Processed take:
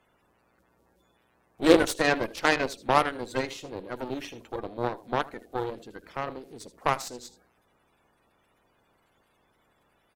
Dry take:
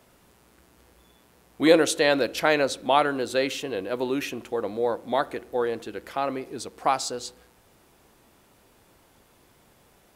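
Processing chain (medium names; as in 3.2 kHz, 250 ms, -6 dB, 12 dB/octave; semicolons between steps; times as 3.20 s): coarse spectral quantiser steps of 30 dB; delay 78 ms -14.5 dB; Chebyshev shaper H 7 -21 dB, 8 -22 dB, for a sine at -4 dBFS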